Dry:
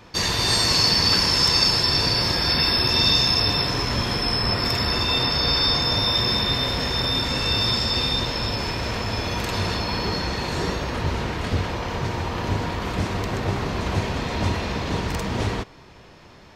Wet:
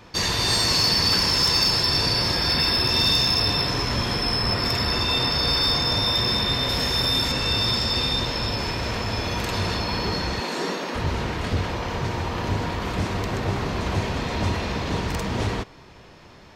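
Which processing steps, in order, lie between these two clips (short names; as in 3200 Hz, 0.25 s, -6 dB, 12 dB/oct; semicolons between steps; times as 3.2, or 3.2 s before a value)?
6.69–7.32 high shelf 6800 Hz +10 dB; 10.4–10.95 steep high-pass 190 Hz 36 dB/oct; soft clip -12 dBFS, distortion -21 dB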